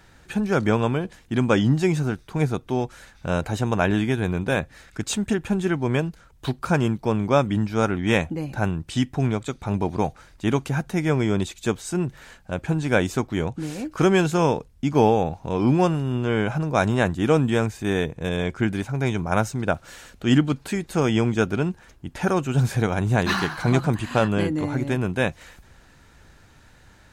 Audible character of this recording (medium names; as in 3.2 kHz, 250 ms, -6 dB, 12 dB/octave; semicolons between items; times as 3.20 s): noise floor -53 dBFS; spectral tilt -6.0 dB/octave